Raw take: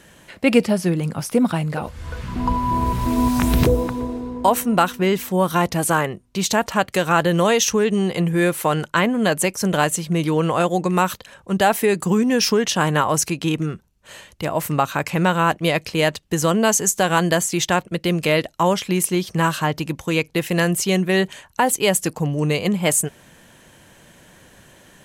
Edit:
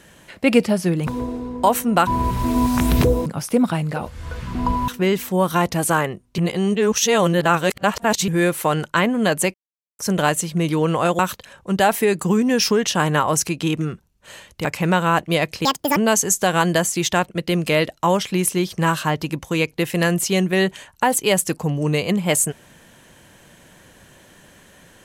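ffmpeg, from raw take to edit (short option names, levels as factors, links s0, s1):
-filter_complex "[0:a]asplit=12[s0][s1][s2][s3][s4][s5][s6][s7][s8][s9][s10][s11];[s0]atrim=end=1.072[s12];[s1]atrim=start=3.878:end=4.882[s13];[s2]atrim=start=2.688:end=3.882[s14];[s3]atrim=start=1.068:end=2.692[s15];[s4]atrim=start=4.878:end=6.382[s16];[s5]atrim=start=6.378:end=8.282,asetpts=PTS-STARTPTS,areverse[s17];[s6]atrim=start=8.278:end=9.54,asetpts=PTS-STARTPTS,afade=t=out:st=1.258:d=0.004:c=hsin,apad=pad_dur=0.45[s18];[s7]atrim=start=9.54:end=10.742,asetpts=PTS-STARTPTS,afade=t=in:d=0.004:c=hsin[s19];[s8]atrim=start=10.998:end=14.462[s20];[s9]atrim=start=14.978:end=15.984[s21];[s10]atrim=start=15.98:end=16.53,asetpts=PTS-STARTPTS,asetrate=77175,aresample=44100[s22];[s11]atrim=start=16.526[s23];[s12][s13]acrossfade=d=0.004:c1=hsin:c2=hsin[s24];[s24][s14]acrossfade=d=0.004:c1=hsin:c2=hsin[s25];[s25][s15]acrossfade=d=0.004:c1=hsin:c2=hsin[s26];[s26][s16]acrossfade=d=0.004:c1=hsin:c2=hsin[s27];[s27][s17]acrossfade=d=0.004:c1=hsin:c2=hsin[s28];[s18][s19]concat=n=2:v=0:a=1[s29];[s28][s29]acrossfade=d=0.004:c1=hsin:c2=hsin[s30];[s30][s20]acrossfade=d=0.004:c1=hsin:c2=hsin[s31];[s31][s21]acrossfade=d=0.004:c1=hsin:c2=hsin[s32];[s32][s22]acrossfade=d=0.004:c1=hsin:c2=hsin[s33];[s33][s23]acrossfade=d=0.004:c1=hsin:c2=hsin"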